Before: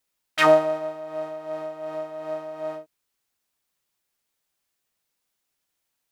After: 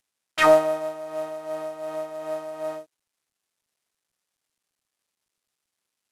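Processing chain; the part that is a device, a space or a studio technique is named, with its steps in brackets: early wireless headset (HPF 170 Hz 6 dB/oct; CVSD 64 kbps); gain +1 dB

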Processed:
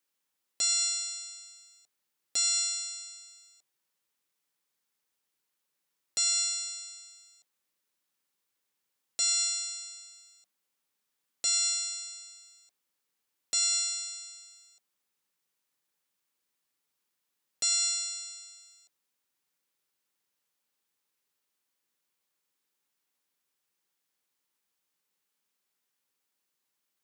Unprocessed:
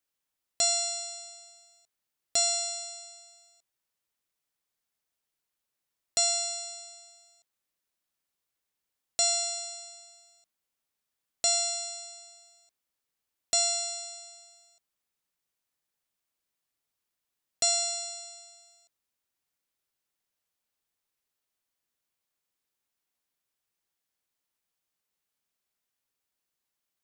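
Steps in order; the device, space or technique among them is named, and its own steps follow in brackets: PA system with an anti-feedback notch (HPF 140 Hz; Butterworth band-stop 670 Hz, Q 5.9; limiter -21 dBFS, peak gain reduction 8.5 dB); gain +3 dB

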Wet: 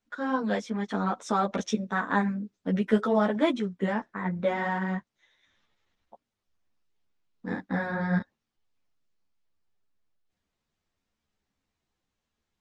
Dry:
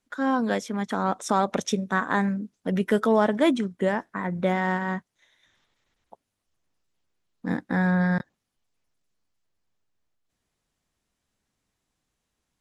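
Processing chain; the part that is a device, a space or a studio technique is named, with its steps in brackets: string-machine ensemble chorus (ensemble effect; LPF 5800 Hz 12 dB/oct)

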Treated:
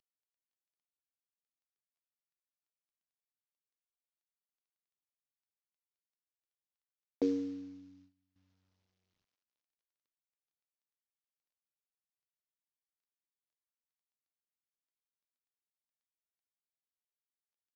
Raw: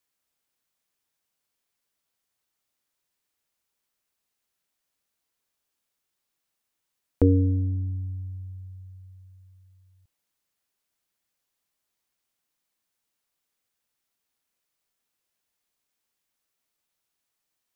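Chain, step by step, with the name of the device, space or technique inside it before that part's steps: early wireless headset (HPF 230 Hz 24 dB/oct; CVSD 32 kbps); 7.39–8.36 gate -53 dBFS, range -15 dB; gain -8.5 dB

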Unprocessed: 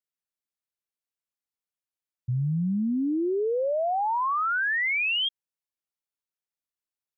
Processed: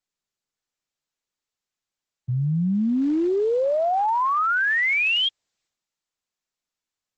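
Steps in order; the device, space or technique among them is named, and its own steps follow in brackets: video call (HPF 110 Hz 12 dB/oct; AGC gain up to 4.5 dB; Opus 12 kbps 48000 Hz)

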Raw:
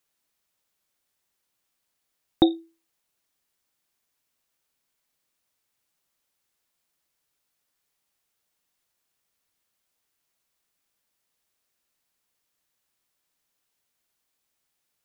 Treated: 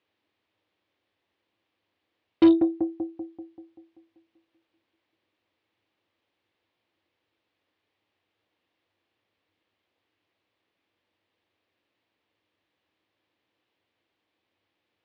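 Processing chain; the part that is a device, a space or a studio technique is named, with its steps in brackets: analogue delay pedal into a guitar amplifier (analogue delay 0.193 s, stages 2048, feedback 56%, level -16.5 dB; tube stage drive 27 dB, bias 0.4; speaker cabinet 88–3500 Hz, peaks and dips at 99 Hz +10 dB, 150 Hz -7 dB, 320 Hz +9 dB, 500 Hz +4 dB, 1400 Hz -5 dB); gain +7 dB

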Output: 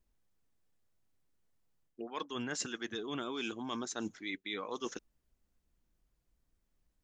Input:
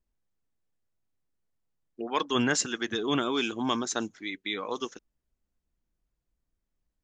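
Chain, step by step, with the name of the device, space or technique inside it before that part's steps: compression on the reversed sound (reverse; compressor 10:1, threshold -39 dBFS, peak gain reduction 17.5 dB; reverse); gain +3.5 dB

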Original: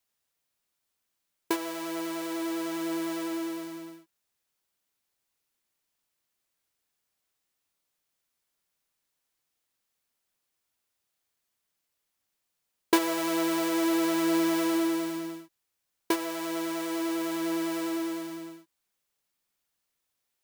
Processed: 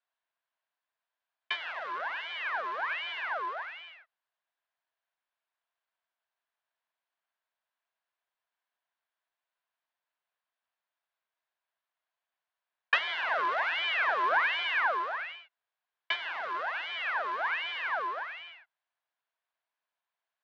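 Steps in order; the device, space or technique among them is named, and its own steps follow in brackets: voice changer toy (ring modulator with a swept carrier 1700 Hz, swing 60%, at 1.3 Hz; speaker cabinet 590–3800 Hz, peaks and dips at 670 Hz +9 dB, 1000 Hz +8 dB, 1600 Hz +8 dB); gain -3.5 dB

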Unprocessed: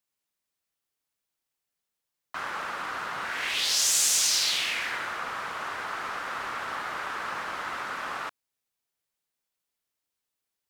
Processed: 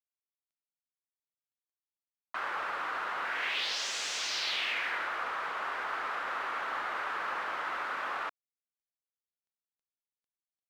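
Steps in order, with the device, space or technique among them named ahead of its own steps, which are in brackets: phone line with mismatched companding (BPF 350–3400 Hz; G.711 law mismatch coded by mu); high shelf 8600 Hz -9 dB; gain -2.5 dB

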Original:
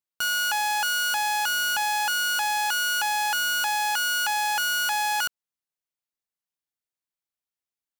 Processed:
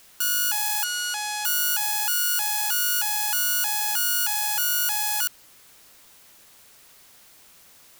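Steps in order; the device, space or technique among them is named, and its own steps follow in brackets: 0.84–1.45 LPF 7700 Hz 12 dB/oct; turntable without a phono preamp (RIAA curve recording; white noise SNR 26 dB); gain -6.5 dB

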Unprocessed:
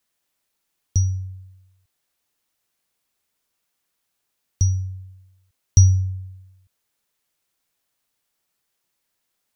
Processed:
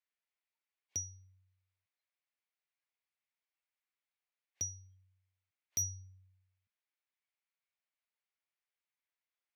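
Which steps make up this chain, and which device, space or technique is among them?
spectral noise reduction 18 dB; megaphone (BPF 570–3800 Hz; bell 2200 Hz +7 dB 0.54 oct; hard clip -30.5 dBFS, distortion -11 dB); de-hum 432.8 Hz, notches 9; gain +1 dB

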